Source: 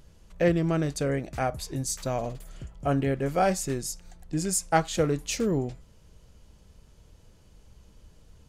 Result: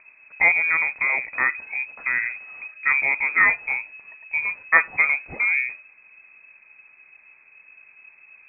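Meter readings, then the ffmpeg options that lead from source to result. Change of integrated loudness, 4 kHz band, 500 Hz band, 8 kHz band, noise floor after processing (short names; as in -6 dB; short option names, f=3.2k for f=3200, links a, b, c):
+7.5 dB, under -40 dB, -13.0 dB, under -40 dB, -54 dBFS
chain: -af "lowshelf=f=430:g=-6,lowpass=f=2.2k:t=q:w=0.5098,lowpass=f=2.2k:t=q:w=0.6013,lowpass=f=2.2k:t=q:w=0.9,lowpass=f=2.2k:t=q:w=2.563,afreqshift=-2600,volume=8dB"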